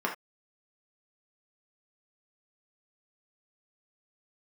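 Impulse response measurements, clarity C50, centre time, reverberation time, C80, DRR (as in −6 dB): 8.0 dB, 19 ms, non-exponential decay, 15.5 dB, −1.5 dB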